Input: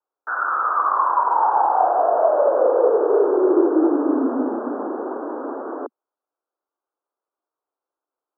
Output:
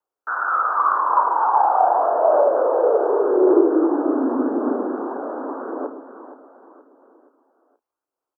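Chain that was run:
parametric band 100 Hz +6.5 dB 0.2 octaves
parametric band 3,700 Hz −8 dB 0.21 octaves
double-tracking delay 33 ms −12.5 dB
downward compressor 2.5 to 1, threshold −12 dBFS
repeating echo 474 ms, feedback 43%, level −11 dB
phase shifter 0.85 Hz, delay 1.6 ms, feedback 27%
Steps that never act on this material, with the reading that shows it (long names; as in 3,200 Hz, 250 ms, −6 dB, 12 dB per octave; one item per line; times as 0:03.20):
parametric band 100 Hz: nothing at its input below 210 Hz
parametric band 3,700 Hz: nothing at its input above 1,500 Hz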